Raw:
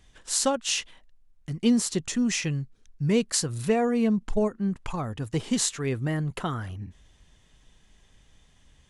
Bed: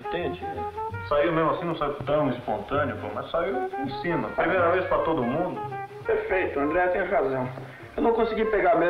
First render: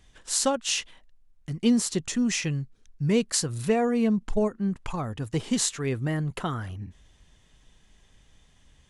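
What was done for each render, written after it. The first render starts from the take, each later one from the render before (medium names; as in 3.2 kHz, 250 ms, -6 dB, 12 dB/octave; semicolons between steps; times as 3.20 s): no audible change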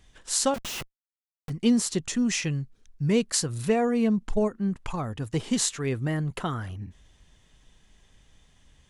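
0.54–1.50 s: Schmitt trigger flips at -35.5 dBFS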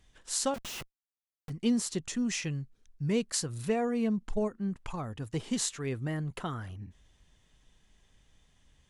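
trim -6 dB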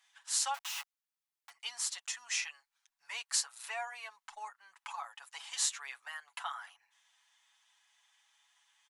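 elliptic high-pass 830 Hz, stop band 60 dB; comb 7.1 ms, depth 64%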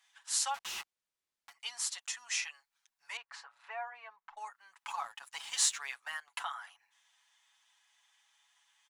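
0.50–1.54 s: decimation joined by straight lines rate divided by 2×; 3.17–4.37 s: low-pass 1.7 kHz; 4.87–6.45 s: waveshaping leveller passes 1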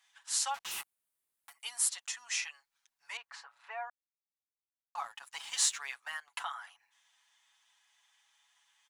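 0.71–1.89 s: resonant high shelf 7.7 kHz +9 dB, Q 1.5; 3.90–4.95 s: mute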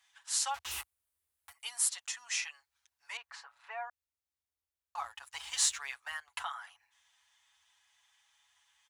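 high-pass 41 Hz; resonant low shelf 110 Hz +11 dB, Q 3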